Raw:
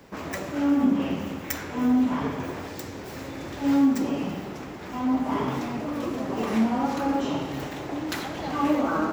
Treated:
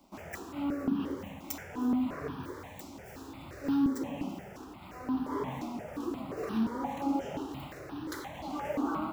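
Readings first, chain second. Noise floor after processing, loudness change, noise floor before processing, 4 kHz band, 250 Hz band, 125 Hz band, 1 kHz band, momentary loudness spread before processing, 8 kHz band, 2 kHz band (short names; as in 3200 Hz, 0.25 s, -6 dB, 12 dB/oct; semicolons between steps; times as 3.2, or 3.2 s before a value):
-48 dBFS, -8.5 dB, -38 dBFS, -11.0 dB, -8.5 dB, -9.0 dB, -8.5 dB, 14 LU, -8.5 dB, -10.5 dB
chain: dynamic EQ 350 Hz, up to +4 dB, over -32 dBFS, Q 1.5; in parallel at -12 dB: bit-crush 7-bit; on the sum: step phaser 5.7 Hz 460–2100 Hz; gain -8.5 dB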